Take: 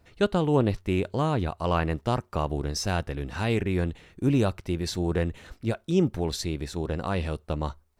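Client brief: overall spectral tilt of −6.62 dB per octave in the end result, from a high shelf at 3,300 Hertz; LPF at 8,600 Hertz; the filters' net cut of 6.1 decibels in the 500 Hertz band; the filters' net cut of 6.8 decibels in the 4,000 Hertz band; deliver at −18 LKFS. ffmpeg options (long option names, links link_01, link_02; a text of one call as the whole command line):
ffmpeg -i in.wav -af "lowpass=8600,equalizer=frequency=500:width_type=o:gain=-8,highshelf=frequency=3300:gain=-7.5,equalizer=frequency=4000:width_type=o:gain=-3,volume=12dB" out.wav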